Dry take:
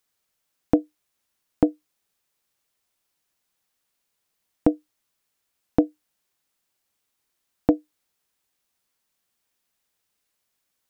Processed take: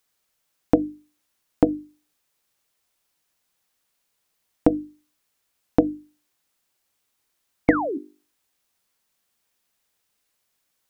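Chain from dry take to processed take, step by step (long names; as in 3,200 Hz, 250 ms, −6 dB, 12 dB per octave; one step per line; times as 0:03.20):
sound drawn into the spectrogram fall, 0:07.68–0:07.98, 250–2,300 Hz −29 dBFS
mains-hum notches 50/100/150/200/250/300/350/400 Hz
level +3 dB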